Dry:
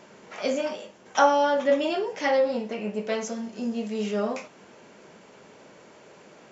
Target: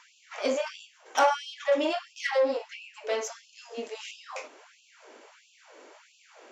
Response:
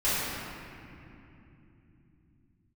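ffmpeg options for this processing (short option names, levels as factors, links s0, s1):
-af "asoftclip=type=tanh:threshold=0.188,aeval=exprs='0.188*(cos(1*acos(clip(val(0)/0.188,-1,1)))-cos(1*PI/2))+0.0133*(cos(4*acos(clip(val(0)/0.188,-1,1)))-cos(4*PI/2))':c=same,afftfilt=real='re*gte(b*sr/1024,230*pow(2500/230,0.5+0.5*sin(2*PI*1.5*pts/sr)))':imag='im*gte(b*sr/1024,230*pow(2500/230,0.5+0.5*sin(2*PI*1.5*pts/sr)))':win_size=1024:overlap=0.75"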